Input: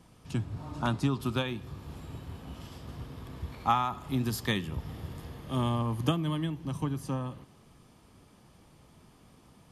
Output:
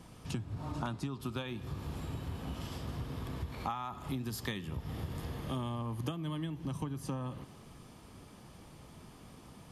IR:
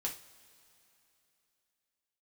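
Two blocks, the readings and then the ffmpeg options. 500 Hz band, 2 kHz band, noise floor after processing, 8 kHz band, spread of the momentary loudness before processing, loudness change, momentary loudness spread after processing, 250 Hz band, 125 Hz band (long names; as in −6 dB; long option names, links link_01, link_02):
−6.0 dB, −7.0 dB, −55 dBFS, −3.5 dB, 15 LU, −6.5 dB, 16 LU, −6.0 dB, −5.0 dB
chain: -af "acompressor=threshold=-39dB:ratio=8,volume=4.5dB"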